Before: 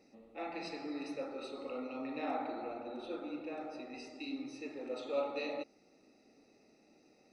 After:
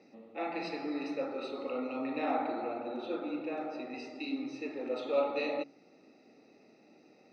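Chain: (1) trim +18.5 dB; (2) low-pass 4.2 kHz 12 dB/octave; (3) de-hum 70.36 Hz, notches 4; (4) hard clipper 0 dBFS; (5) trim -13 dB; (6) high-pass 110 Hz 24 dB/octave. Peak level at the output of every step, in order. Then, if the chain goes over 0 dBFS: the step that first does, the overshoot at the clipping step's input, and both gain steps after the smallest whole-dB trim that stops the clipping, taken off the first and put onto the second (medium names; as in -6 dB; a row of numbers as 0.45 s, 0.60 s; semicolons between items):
-4.5 dBFS, -4.5 dBFS, -5.0 dBFS, -5.0 dBFS, -18.0 dBFS, -18.0 dBFS; nothing clips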